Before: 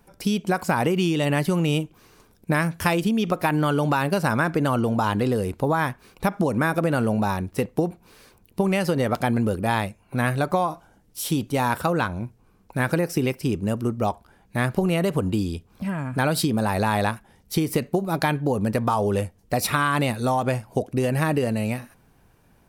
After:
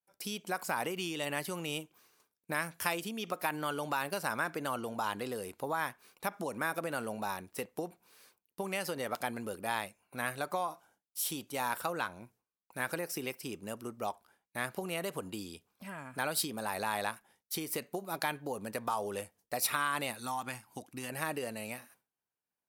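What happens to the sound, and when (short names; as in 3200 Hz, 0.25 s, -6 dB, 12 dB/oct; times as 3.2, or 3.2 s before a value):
20.19–21.1 band shelf 520 Hz -11.5 dB 1 oct
whole clip: HPF 730 Hz 6 dB/oct; expander -51 dBFS; high shelf 8800 Hz +8 dB; gain -8.5 dB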